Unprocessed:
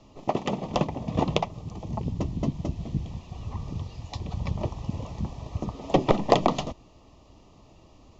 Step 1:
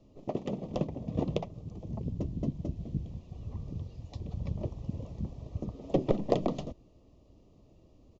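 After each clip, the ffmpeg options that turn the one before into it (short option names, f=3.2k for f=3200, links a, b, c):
-af "firequalizer=gain_entry='entry(540,0);entry(850,-12);entry(3700,-9)':delay=0.05:min_phase=1,volume=-5dB"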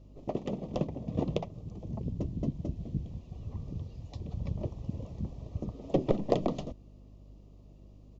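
-af "aeval=exprs='val(0)+0.00251*(sin(2*PI*50*n/s)+sin(2*PI*2*50*n/s)/2+sin(2*PI*3*50*n/s)/3+sin(2*PI*4*50*n/s)/4+sin(2*PI*5*50*n/s)/5)':c=same"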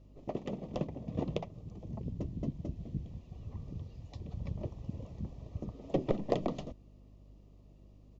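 -af "equalizer=f=1.8k:t=o:w=1:g=4.5,volume=-4dB"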